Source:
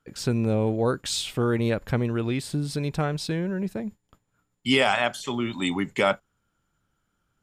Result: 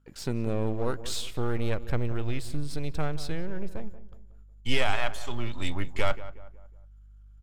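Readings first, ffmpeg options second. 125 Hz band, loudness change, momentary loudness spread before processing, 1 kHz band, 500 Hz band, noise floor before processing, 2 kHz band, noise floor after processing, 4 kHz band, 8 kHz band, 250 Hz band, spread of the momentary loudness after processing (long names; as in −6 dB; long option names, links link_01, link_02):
−4.5 dB, −6.5 dB, 7 LU, −6.5 dB, −7.0 dB, −76 dBFS, −6.0 dB, −51 dBFS, −6.5 dB, −6.5 dB, −8.5 dB, 10 LU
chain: -filter_complex "[0:a]aeval=exprs='if(lt(val(0),0),0.447*val(0),val(0))':channel_layout=same,aeval=exprs='val(0)+0.001*(sin(2*PI*50*n/s)+sin(2*PI*2*50*n/s)/2+sin(2*PI*3*50*n/s)/3+sin(2*PI*4*50*n/s)/4+sin(2*PI*5*50*n/s)/5)':channel_layout=same,asplit=2[link_01][link_02];[link_02]adelay=183,lowpass=frequency=1600:poles=1,volume=-14dB,asplit=2[link_03][link_04];[link_04]adelay=183,lowpass=frequency=1600:poles=1,volume=0.43,asplit=2[link_05][link_06];[link_06]adelay=183,lowpass=frequency=1600:poles=1,volume=0.43,asplit=2[link_07][link_08];[link_08]adelay=183,lowpass=frequency=1600:poles=1,volume=0.43[link_09];[link_01][link_03][link_05][link_07][link_09]amix=inputs=5:normalize=0,asubboost=boost=10.5:cutoff=69,volume=-4dB"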